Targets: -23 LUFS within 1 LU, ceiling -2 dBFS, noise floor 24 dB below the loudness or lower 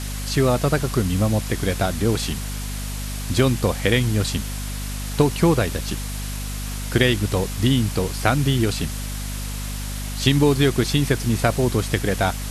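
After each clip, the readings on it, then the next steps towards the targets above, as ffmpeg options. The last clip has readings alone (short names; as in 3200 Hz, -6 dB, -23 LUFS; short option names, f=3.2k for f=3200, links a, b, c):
hum 50 Hz; harmonics up to 250 Hz; hum level -27 dBFS; noise floor -29 dBFS; noise floor target -46 dBFS; loudness -22.0 LUFS; peak -2.0 dBFS; loudness target -23.0 LUFS
-> -af "bandreject=f=50:t=h:w=6,bandreject=f=100:t=h:w=6,bandreject=f=150:t=h:w=6,bandreject=f=200:t=h:w=6,bandreject=f=250:t=h:w=6"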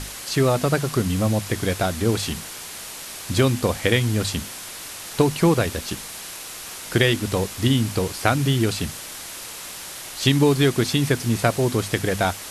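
hum none; noise floor -36 dBFS; noise floor target -46 dBFS
-> -af "afftdn=nr=10:nf=-36"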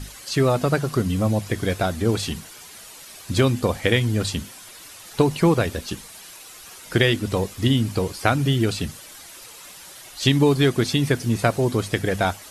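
noise floor -43 dBFS; noise floor target -46 dBFS
-> -af "afftdn=nr=6:nf=-43"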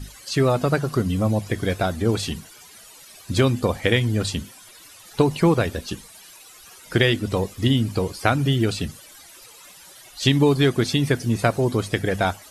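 noise floor -47 dBFS; loudness -22.0 LUFS; peak -1.5 dBFS; loudness target -23.0 LUFS
-> -af "volume=-1dB"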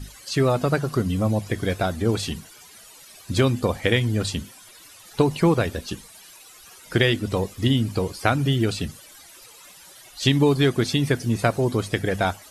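loudness -23.0 LUFS; peak -2.5 dBFS; noise floor -48 dBFS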